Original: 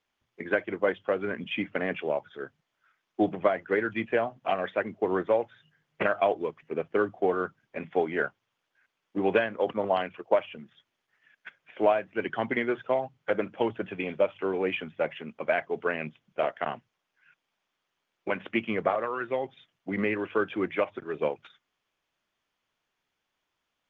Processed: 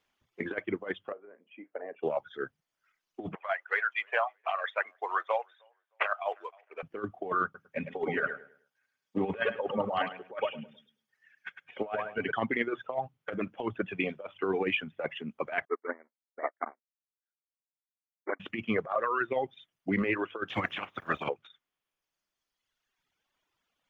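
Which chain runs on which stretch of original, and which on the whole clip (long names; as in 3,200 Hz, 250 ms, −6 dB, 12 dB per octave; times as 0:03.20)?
0:01.12–0:02.03: four-pole ladder band-pass 640 Hz, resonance 30% + double-tracking delay 36 ms −12 dB
0:03.35–0:06.83: high-pass filter 710 Hz 24 dB per octave + repeating echo 309 ms, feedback 28%, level −22 dB + one half of a high-frequency compander decoder only
0:07.44–0:12.32: notch comb filter 340 Hz + repeating echo 104 ms, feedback 31%, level −6 dB
0:15.65–0:18.40: each half-wave held at its own peak + linear-phase brick-wall band-pass 230–2,300 Hz + expander for the loud parts 2.5 to 1, over −43 dBFS
0:20.48–0:21.28: ceiling on every frequency bin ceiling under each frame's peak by 24 dB + high-pass filter 49 Hz
whole clip: reverb reduction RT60 1.7 s; dynamic equaliser 1,200 Hz, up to +6 dB, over −48 dBFS, Q 4.4; compressor whose output falls as the input rises −29 dBFS, ratio −0.5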